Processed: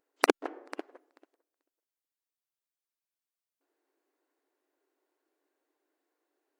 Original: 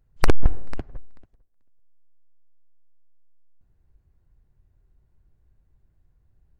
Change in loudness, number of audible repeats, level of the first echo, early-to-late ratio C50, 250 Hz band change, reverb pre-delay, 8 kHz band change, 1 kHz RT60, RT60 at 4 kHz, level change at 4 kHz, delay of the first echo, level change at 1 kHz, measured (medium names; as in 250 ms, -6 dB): -2.0 dB, no echo, no echo, no reverb, -2.5 dB, no reverb, no reading, no reverb, no reverb, 0.0 dB, no echo, 0.0 dB